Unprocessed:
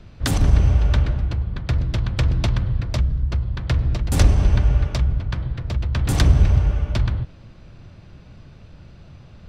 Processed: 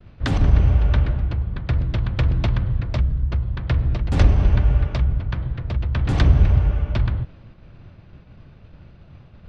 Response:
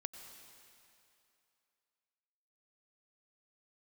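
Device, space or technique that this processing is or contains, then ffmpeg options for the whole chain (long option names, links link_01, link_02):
hearing-loss simulation: -af "lowpass=3300,agate=range=-33dB:threshold=-40dB:ratio=3:detection=peak"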